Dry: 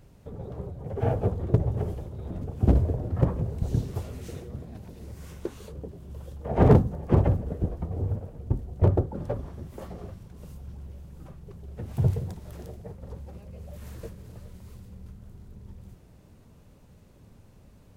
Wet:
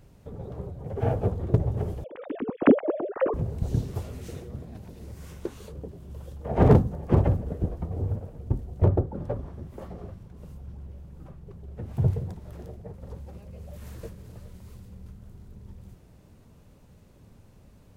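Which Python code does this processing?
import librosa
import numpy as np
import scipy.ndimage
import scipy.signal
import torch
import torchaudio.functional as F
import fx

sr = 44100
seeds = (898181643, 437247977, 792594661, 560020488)

y = fx.sine_speech(x, sr, at=(2.04, 3.34))
y = fx.high_shelf(y, sr, hz=2600.0, db=-7.5, at=(8.84, 12.94))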